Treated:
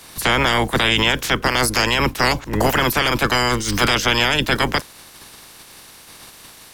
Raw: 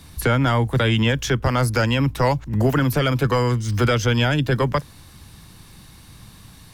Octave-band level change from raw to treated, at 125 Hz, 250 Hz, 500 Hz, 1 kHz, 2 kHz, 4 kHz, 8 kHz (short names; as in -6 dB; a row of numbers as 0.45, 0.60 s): -6.5, -1.5, 0.0, +4.5, +7.5, +9.0, +8.0 dB